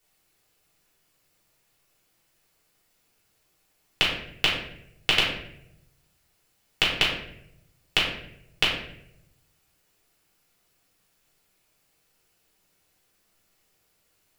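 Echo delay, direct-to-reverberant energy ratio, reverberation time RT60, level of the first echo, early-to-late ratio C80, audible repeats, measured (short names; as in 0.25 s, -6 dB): none, -6.5 dB, 0.75 s, none, 6.0 dB, none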